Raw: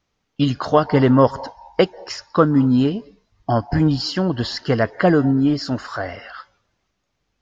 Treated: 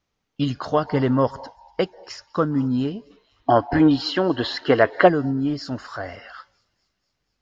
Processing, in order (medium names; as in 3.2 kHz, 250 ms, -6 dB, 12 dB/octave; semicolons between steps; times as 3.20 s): feedback echo behind a high-pass 241 ms, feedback 65%, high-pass 5.5 kHz, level -20 dB; time-frequency box 3.11–5.08 s, 240–4300 Hz +11 dB; gain riding within 3 dB 2 s; trim -7 dB